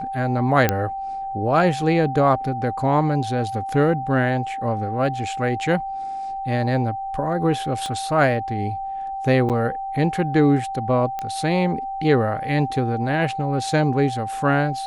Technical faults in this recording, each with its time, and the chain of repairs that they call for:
whine 780 Hz -26 dBFS
0.69 s: pop -4 dBFS
7.86 s: pop -17 dBFS
9.49–9.50 s: dropout 7.9 ms
11.19 s: pop -15 dBFS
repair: de-click; band-stop 780 Hz, Q 30; interpolate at 9.49 s, 7.9 ms

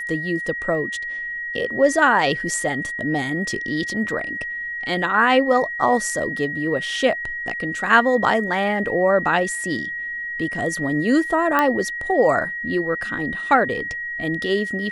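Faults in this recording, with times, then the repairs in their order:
whine 1.9 kHz -26 dBFS
11.59 s: pop -6 dBFS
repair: de-click; band-stop 1.9 kHz, Q 30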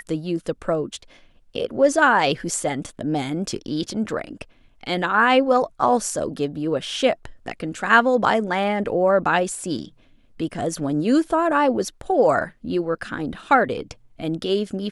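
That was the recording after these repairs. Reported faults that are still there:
nothing left

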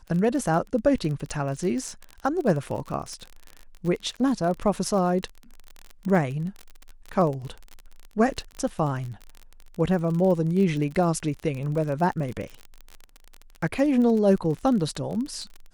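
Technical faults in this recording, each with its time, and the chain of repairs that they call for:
crackle 35 per s -30 dBFS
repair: de-click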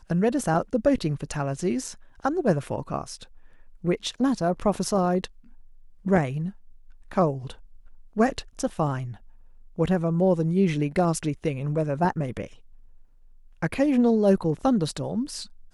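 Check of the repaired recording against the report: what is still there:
nothing left

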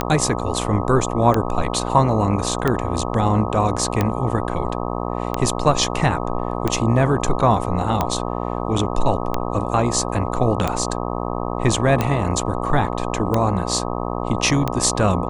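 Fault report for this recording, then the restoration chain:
buzz 60 Hz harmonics 21 -25 dBFS
tick 45 rpm -6 dBFS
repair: de-click; de-hum 60 Hz, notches 21

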